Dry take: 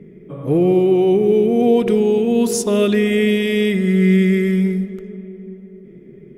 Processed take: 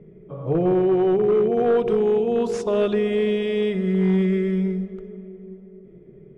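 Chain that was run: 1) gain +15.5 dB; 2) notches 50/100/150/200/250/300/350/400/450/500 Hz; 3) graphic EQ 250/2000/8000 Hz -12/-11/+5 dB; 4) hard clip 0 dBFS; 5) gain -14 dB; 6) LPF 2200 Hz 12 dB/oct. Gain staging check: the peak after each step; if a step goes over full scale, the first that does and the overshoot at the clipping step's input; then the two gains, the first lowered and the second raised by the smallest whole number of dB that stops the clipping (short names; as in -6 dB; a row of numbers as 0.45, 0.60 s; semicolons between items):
+10.5, +10.5, +7.5, 0.0, -14.0, -13.5 dBFS; step 1, 7.5 dB; step 1 +7.5 dB, step 5 -6 dB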